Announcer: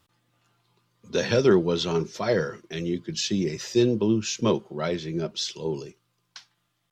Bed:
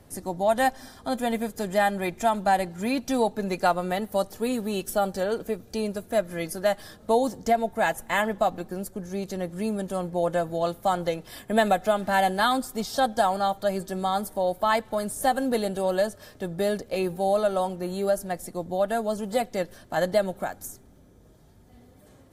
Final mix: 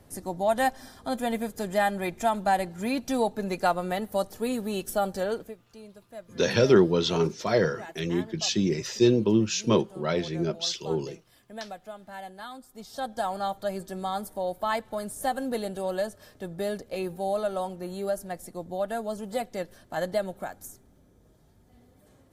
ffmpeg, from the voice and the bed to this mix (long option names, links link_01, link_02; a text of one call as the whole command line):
ffmpeg -i stem1.wav -i stem2.wav -filter_complex "[0:a]adelay=5250,volume=0.5dB[link_01];[1:a]volume=11.5dB,afade=type=out:start_time=5.31:duration=0.25:silence=0.149624,afade=type=in:start_time=12.66:duration=0.79:silence=0.211349[link_02];[link_01][link_02]amix=inputs=2:normalize=0" out.wav